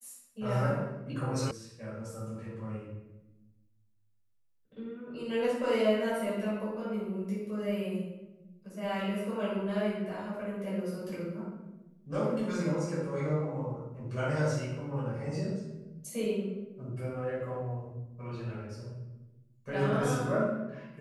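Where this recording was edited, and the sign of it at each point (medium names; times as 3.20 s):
1.51 s: sound stops dead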